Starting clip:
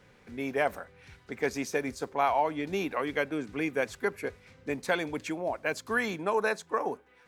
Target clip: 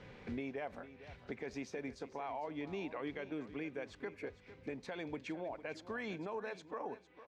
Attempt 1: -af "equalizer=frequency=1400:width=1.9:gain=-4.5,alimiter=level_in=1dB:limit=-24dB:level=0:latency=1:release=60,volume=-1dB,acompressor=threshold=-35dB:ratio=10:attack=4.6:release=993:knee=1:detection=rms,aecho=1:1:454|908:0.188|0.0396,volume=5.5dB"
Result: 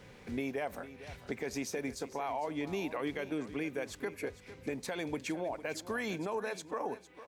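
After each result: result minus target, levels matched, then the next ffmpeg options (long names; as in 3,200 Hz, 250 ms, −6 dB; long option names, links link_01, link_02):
downward compressor: peak gain reduction −6 dB; 4,000 Hz band +2.5 dB
-af "equalizer=frequency=1400:width=1.9:gain=-4.5,alimiter=level_in=1dB:limit=-24dB:level=0:latency=1:release=60,volume=-1dB,acompressor=threshold=-41.5dB:ratio=10:attack=4.6:release=993:knee=1:detection=rms,aecho=1:1:454|908:0.188|0.0396,volume=5.5dB"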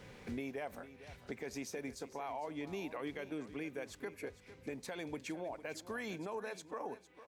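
4,000 Hz band +2.5 dB
-af "lowpass=3900,equalizer=frequency=1400:width=1.9:gain=-4.5,alimiter=level_in=1dB:limit=-24dB:level=0:latency=1:release=60,volume=-1dB,acompressor=threshold=-41.5dB:ratio=10:attack=4.6:release=993:knee=1:detection=rms,aecho=1:1:454|908:0.188|0.0396,volume=5.5dB"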